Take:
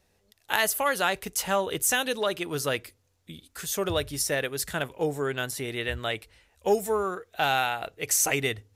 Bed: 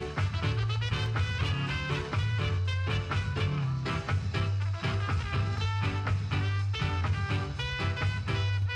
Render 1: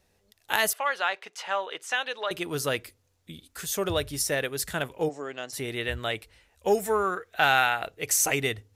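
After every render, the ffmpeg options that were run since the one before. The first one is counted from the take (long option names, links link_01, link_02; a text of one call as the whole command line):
ffmpeg -i in.wav -filter_complex "[0:a]asettb=1/sr,asplit=3[link_01][link_02][link_03];[link_01]atrim=end=0.734[link_04];[link_02]atrim=start=0.73:end=2.31,asetpts=PTS-STARTPTS,afade=type=in:duration=0.004:curve=qsin,afade=type=out:start_time=1.576:duration=0.004:curve=qsin,highpass=710,lowpass=3400[link_05];[link_03]atrim=start=2.306[link_06];[link_04][link_05]acrossfade=duration=0.004:curve1=hsin:curve2=qsin[link_07];[link_07][link_06]acrossfade=duration=0.004:curve1=qsin:curve2=hsin,asplit=3[link_08][link_09][link_10];[link_08]afade=type=out:start_time=5.08:duration=0.02[link_11];[link_09]highpass=340,equalizer=frequency=410:width_type=q:width=4:gain=-7,equalizer=frequency=950:width_type=q:width=4:gain=-6,equalizer=frequency=1500:width_type=q:width=4:gain=-9,equalizer=frequency=2300:width_type=q:width=4:gain=-5,equalizer=frequency=3600:width_type=q:width=4:gain=-10,equalizer=frequency=6100:width_type=q:width=4:gain=3,lowpass=frequency=6300:width=0.5412,lowpass=frequency=6300:width=1.3066,afade=type=in:start_time=5.08:duration=0.02,afade=type=out:start_time=5.52:duration=0.02[link_12];[link_10]afade=type=in:start_time=5.52:duration=0.02[link_13];[link_11][link_12][link_13]amix=inputs=3:normalize=0,asettb=1/sr,asplit=3[link_14][link_15][link_16];[link_14]atrim=end=6.754[link_17];[link_15]atrim=start=6.75:end=7.83,asetpts=PTS-STARTPTS,afade=type=in:duration=0.004:curve=qsin,afade=type=out:start_time=1.076:duration=0.004:curve=qsin,equalizer=frequency=1700:width=1.1:gain=7[link_18];[link_16]atrim=start=7.826[link_19];[link_17][link_18]acrossfade=duration=0.004:curve1=hsin:curve2=qsin[link_20];[link_20][link_19]acrossfade=duration=0.004:curve1=qsin:curve2=hsin" out.wav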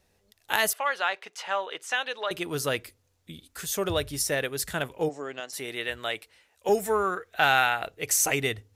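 ffmpeg -i in.wav -filter_complex "[0:a]asettb=1/sr,asplit=3[link_01][link_02][link_03];[link_01]atrim=end=5.404[link_04];[link_02]atrim=start=5.4:end=6.69,asetpts=PTS-STARTPTS,afade=type=in:duration=0.004:curve=qsin,afade=type=out:start_time=1.286:duration=0.004:curve=qsin,highpass=frequency=420:poles=1[link_05];[link_03]atrim=start=6.686[link_06];[link_04][link_05]acrossfade=duration=0.004:curve1=hsin:curve2=qsin[link_07];[link_07][link_06]acrossfade=duration=0.004:curve1=qsin:curve2=hsin" out.wav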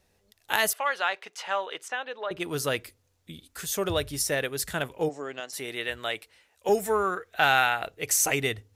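ffmpeg -i in.wav -filter_complex "[0:a]asettb=1/sr,asplit=3[link_01][link_02][link_03];[link_01]atrim=end=1.884[link_04];[link_02]atrim=start=1.88:end=2.4,asetpts=PTS-STARTPTS,afade=type=in:duration=0.004:curve=qsin,afade=type=out:start_time=0.516:duration=0.004:curve=qsin,lowpass=frequency=1200:poles=1[link_05];[link_03]atrim=start=2.396[link_06];[link_04][link_05]acrossfade=duration=0.004:curve1=hsin:curve2=qsin[link_07];[link_07][link_06]acrossfade=duration=0.004:curve1=qsin:curve2=hsin" out.wav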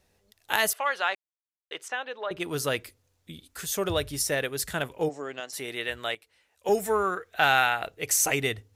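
ffmpeg -i in.wav -filter_complex "[0:a]asplit=4[link_01][link_02][link_03][link_04];[link_01]atrim=end=1.15,asetpts=PTS-STARTPTS,afade=type=out:start_time=1.146:duration=0.004:curve=hsin[link_05];[link_02]atrim=start=1.15:end=1.71,asetpts=PTS-STARTPTS,volume=0[link_06];[link_03]atrim=start=1.71:end=6.15,asetpts=PTS-STARTPTS,afade=type=in:duration=0.004:curve=hsin,afade=type=out:start_time=4.436:duration=0.004:curve=hsin:silence=0.223872[link_07];[link_04]atrim=start=6.15,asetpts=PTS-STARTPTS,afade=type=in:duration=0.63:silence=0.223872[link_08];[link_05][link_06][link_07][link_08]concat=n=4:v=0:a=1" out.wav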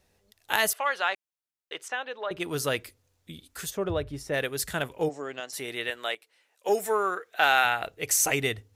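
ffmpeg -i in.wav -filter_complex "[0:a]asplit=3[link_01][link_02][link_03];[link_01]afade=type=out:start_time=3.69:duration=0.02[link_04];[link_02]lowpass=frequency=1000:poles=1,afade=type=in:start_time=3.69:duration=0.02,afade=type=out:start_time=4.33:duration=0.02[link_05];[link_03]afade=type=in:start_time=4.33:duration=0.02[link_06];[link_04][link_05][link_06]amix=inputs=3:normalize=0,asettb=1/sr,asplit=3[link_07][link_08][link_09];[link_07]atrim=end=5.904[link_10];[link_08]atrim=start=5.9:end=7.65,asetpts=PTS-STARTPTS,afade=type=in:duration=0.004:curve=qsin,afade=type=out:start_time=1.746:duration=0.004:curve=qsin,highpass=300[link_11];[link_09]atrim=start=7.646[link_12];[link_10][link_11]acrossfade=duration=0.004:curve1=hsin:curve2=qsin[link_13];[link_13][link_12]acrossfade=duration=0.004:curve1=qsin:curve2=hsin" out.wav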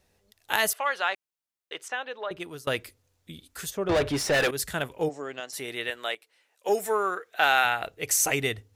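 ffmpeg -i in.wav -filter_complex "[0:a]asettb=1/sr,asplit=3[link_01][link_02][link_03];[link_01]atrim=end=3.894[link_04];[link_02]atrim=start=3.89:end=4.51,asetpts=PTS-STARTPTS,afade=type=in:duration=0.004:curve=qsin,afade=type=out:start_time=0.616:duration=0.004:curve=qsin,asplit=2[link_05][link_06];[link_06]highpass=frequency=720:poles=1,volume=28dB,asoftclip=type=tanh:threshold=-16dB[link_07];[link_05][link_07]amix=inputs=2:normalize=0,lowpass=frequency=4400:poles=1,volume=-6dB[link_08];[link_03]atrim=start=4.506[link_09];[link_04][link_08]acrossfade=duration=0.004:curve1=hsin:curve2=qsin[link_10];[link_10][link_09]acrossfade=duration=0.004:curve1=qsin:curve2=hsin,asplit=2[link_11][link_12];[link_11]atrim=end=2.67,asetpts=PTS-STARTPTS,afade=type=out:start_time=2.22:duration=0.45:silence=0.0749894[link_13];[link_12]atrim=start=2.67,asetpts=PTS-STARTPTS,afade=type=in:duration=0.004:curve=hsin:silence=0.0749894[link_14];[link_13][link_14]concat=n=2:v=0:a=1" out.wav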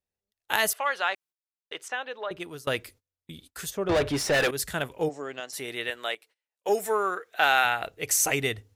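ffmpeg -i in.wav -af "agate=range=-25dB:threshold=-52dB:ratio=16:detection=peak" out.wav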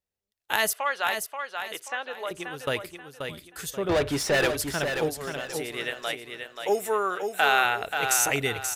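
ffmpeg -i in.wav -af "aecho=1:1:532|1064|1596|2128:0.473|0.156|0.0515|0.017" out.wav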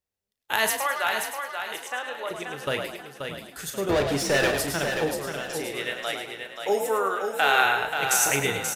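ffmpeg -i in.wav -filter_complex "[0:a]asplit=2[link_01][link_02];[link_02]adelay=36,volume=-9.5dB[link_03];[link_01][link_03]amix=inputs=2:normalize=0,asplit=6[link_04][link_05][link_06][link_07][link_08][link_09];[link_05]adelay=106,afreqshift=49,volume=-7dB[link_10];[link_06]adelay=212,afreqshift=98,volume=-15.2dB[link_11];[link_07]adelay=318,afreqshift=147,volume=-23.4dB[link_12];[link_08]adelay=424,afreqshift=196,volume=-31.5dB[link_13];[link_09]adelay=530,afreqshift=245,volume=-39.7dB[link_14];[link_04][link_10][link_11][link_12][link_13][link_14]amix=inputs=6:normalize=0" out.wav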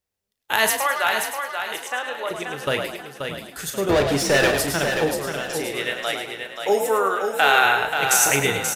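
ffmpeg -i in.wav -af "volume=4.5dB,alimiter=limit=-3dB:level=0:latency=1" out.wav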